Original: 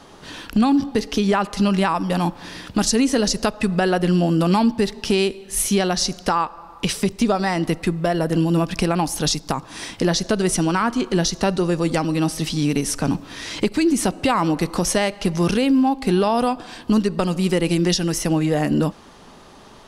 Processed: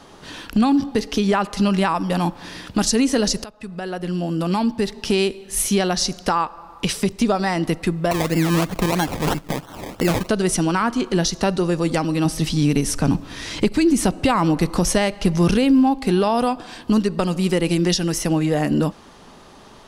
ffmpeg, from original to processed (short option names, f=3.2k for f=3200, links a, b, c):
-filter_complex "[0:a]asettb=1/sr,asplit=3[a][b][c];[a]atrim=end=8.114[d];[b]atrim=start=8.11:end=10.29,asetpts=PTS-STARTPTS,afade=t=in:d=0.004:c=qsin,afade=t=out:st=2.176:d=0.004:c=qsin,acrusher=samples=25:mix=1:aa=0.000001:lfo=1:lforange=15:lforate=3[e];[c]atrim=start=10.286[f];[d][e]acrossfade=d=0.004:c1=hsin:c2=qsin[g];[g][f]acrossfade=d=0.004:c1=qsin:c2=hsin,asettb=1/sr,asplit=3[h][i][j];[h]atrim=end=12.254[k];[i]atrim=start=12.25:end=15.99,asetpts=PTS-STARTPTS,afade=t=in:d=0.004:c=qsin,afade=t=out:st=3.736:d=0.004:c=qsin,lowshelf=f=150:g=8[l];[j]atrim=start=15.986[m];[k][l]acrossfade=d=0.004:c1=hsin:c2=qsin[n];[n][m]acrossfade=d=0.004:c1=qsin:c2=hsin,asplit=2[o][p];[o]atrim=end=3.44,asetpts=PTS-STARTPTS,afade=t=out:st=3.436:d=0.004:c=hsin:silence=0.112202[q];[p]atrim=start=3.44,asetpts=PTS-STARTPTS,afade=t=in:d=1.77:silence=0.112202[r];[q][r]concat=n=2:v=0:a=1"